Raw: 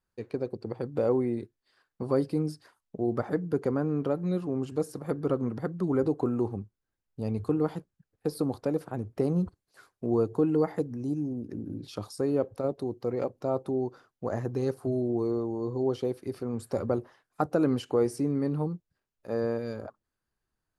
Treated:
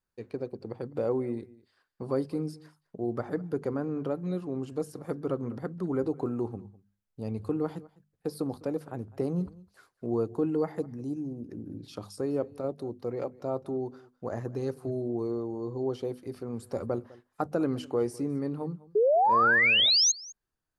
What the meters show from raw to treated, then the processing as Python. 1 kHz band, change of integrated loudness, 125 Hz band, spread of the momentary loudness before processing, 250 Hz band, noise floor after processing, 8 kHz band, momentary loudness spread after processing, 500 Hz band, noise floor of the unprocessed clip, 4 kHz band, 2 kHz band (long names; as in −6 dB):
+7.0 dB, +0.5 dB, −4.0 dB, 11 LU, −3.5 dB, −80 dBFS, +17.5 dB, 17 LU, −1.5 dB, below −85 dBFS, +21.0 dB, +17.0 dB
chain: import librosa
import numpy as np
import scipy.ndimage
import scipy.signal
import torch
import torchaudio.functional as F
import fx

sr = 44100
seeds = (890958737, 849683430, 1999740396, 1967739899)

y = fx.hum_notches(x, sr, base_hz=50, count=5)
y = fx.spec_paint(y, sr, seeds[0], shape='rise', start_s=18.95, length_s=1.17, low_hz=400.0, high_hz=6700.0, level_db=-19.0)
y = y + 10.0 ** (-21.5 / 20.0) * np.pad(y, (int(204 * sr / 1000.0), 0))[:len(y)]
y = y * 10.0 ** (-3.0 / 20.0)